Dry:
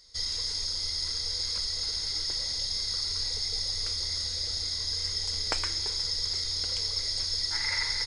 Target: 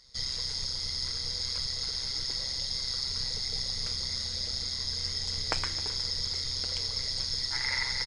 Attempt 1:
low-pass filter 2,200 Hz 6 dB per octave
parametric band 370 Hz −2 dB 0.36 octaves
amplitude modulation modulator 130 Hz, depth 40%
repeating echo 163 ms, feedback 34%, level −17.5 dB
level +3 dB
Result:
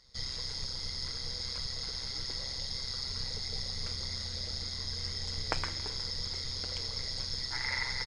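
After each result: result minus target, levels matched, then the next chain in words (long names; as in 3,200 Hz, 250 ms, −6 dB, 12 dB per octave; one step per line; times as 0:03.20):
echo 102 ms early; 2,000 Hz band +3.0 dB
low-pass filter 2,200 Hz 6 dB per octave
parametric band 370 Hz −2 dB 0.36 octaves
amplitude modulation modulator 130 Hz, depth 40%
repeating echo 265 ms, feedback 34%, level −17.5 dB
level +3 dB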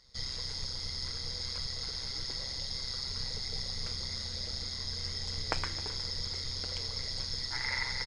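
2,000 Hz band +3.0 dB
low-pass filter 5,500 Hz 6 dB per octave
parametric band 370 Hz −2 dB 0.36 octaves
amplitude modulation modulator 130 Hz, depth 40%
repeating echo 265 ms, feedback 34%, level −17.5 dB
level +3 dB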